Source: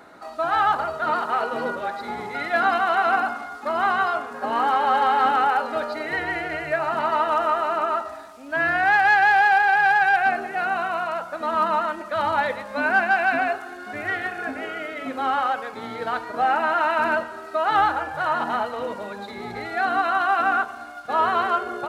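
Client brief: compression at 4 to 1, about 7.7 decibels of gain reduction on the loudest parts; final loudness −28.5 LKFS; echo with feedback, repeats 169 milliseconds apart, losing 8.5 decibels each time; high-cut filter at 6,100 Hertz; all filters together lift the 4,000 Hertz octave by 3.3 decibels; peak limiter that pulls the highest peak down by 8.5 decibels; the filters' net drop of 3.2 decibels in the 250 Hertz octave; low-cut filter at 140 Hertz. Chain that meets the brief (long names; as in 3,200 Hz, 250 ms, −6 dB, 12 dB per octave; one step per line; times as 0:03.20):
high-pass filter 140 Hz
low-pass filter 6,100 Hz
parametric band 250 Hz −3.5 dB
parametric band 4,000 Hz +5 dB
downward compressor 4 to 1, threshold −23 dBFS
brickwall limiter −23 dBFS
repeating echo 169 ms, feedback 38%, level −8.5 dB
level +2 dB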